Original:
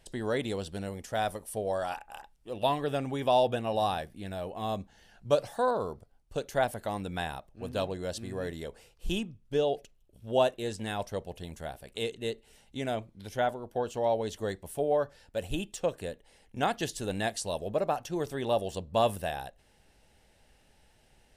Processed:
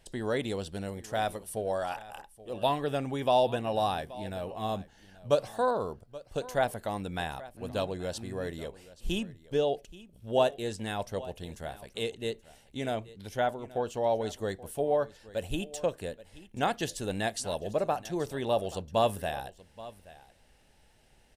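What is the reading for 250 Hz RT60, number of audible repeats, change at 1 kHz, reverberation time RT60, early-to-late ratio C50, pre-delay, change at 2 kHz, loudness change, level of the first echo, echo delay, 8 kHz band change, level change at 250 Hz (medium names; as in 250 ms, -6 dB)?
no reverb, 1, 0.0 dB, no reverb, no reverb, no reverb, 0.0 dB, 0.0 dB, -18.5 dB, 828 ms, 0.0 dB, 0.0 dB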